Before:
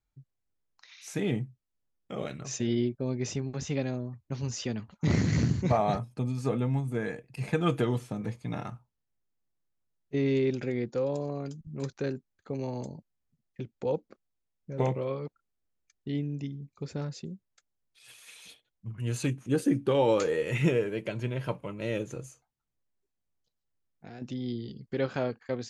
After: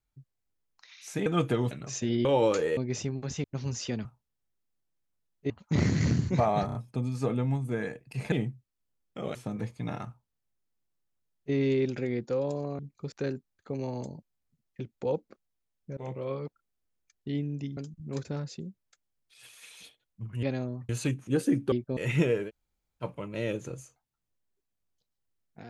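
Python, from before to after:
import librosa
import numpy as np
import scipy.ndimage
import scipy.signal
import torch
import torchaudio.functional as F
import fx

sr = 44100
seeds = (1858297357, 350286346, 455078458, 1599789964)

y = fx.edit(x, sr, fx.swap(start_s=1.26, length_s=1.03, other_s=7.55, other_length_s=0.45),
    fx.swap(start_s=2.83, length_s=0.25, other_s=19.91, other_length_s=0.52),
    fx.move(start_s=3.75, length_s=0.46, to_s=19.08),
    fx.stutter(start_s=5.98, slice_s=0.03, count=4),
    fx.duplicate(start_s=8.73, length_s=1.45, to_s=4.82),
    fx.swap(start_s=11.44, length_s=0.48, other_s=16.57, other_length_s=0.33),
    fx.fade_in_from(start_s=14.77, length_s=0.38, floor_db=-23.0),
    fx.room_tone_fill(start_s=20.94, length_s=0.55, crossfade_s=0.06), tone=tone)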